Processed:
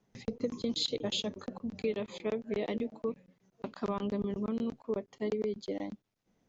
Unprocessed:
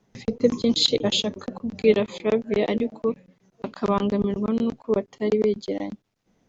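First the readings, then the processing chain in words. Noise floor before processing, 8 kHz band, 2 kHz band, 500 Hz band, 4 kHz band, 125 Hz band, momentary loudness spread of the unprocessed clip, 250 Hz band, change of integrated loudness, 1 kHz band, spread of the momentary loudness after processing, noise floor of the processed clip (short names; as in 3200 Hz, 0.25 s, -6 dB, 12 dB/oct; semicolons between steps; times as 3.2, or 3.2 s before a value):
-72 dBFS, n/a, -11.5 dB, -12.0 dB, -11.5 dB, -11.0 dB, 12 LU, -11.0 dB, -12.0 dB, -11.5 dB, 9 LU, -79 dBFS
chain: compressor 6:1, threshold -21 dBFS, peak gain reduction 9.5 dB; gain -8 dB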